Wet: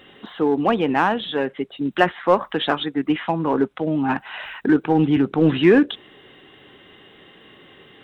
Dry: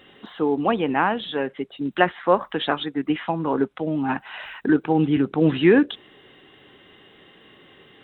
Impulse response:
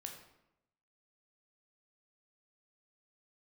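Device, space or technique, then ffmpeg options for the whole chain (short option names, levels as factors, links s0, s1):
parallel distortion: -filter_complex "[0:a]asplit=2[s0][s1];[s1]asoftclip=type=hard:threshold=0.133,volume=0.398[s2];[s0][s2]amix=inputs=2:normalize=0"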